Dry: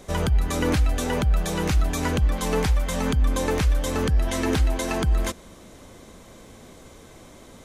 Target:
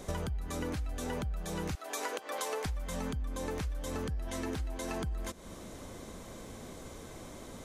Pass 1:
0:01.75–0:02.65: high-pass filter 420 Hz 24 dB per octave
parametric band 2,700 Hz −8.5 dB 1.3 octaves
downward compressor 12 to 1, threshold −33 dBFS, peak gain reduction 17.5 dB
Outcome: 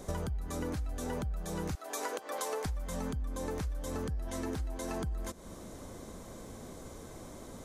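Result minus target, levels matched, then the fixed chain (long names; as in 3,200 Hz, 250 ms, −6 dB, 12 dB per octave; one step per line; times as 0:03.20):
2,000 Hz band −2.5 dB
0:01.75–0:02.65: high-pass filter 420 Hz 24 dB per octave
parametric band 2,700 Hz −2.5 dB 1.3 octaves
downward compressor 12 to 1, threshold −33 dBFS, peak gain reduction 17.5 dB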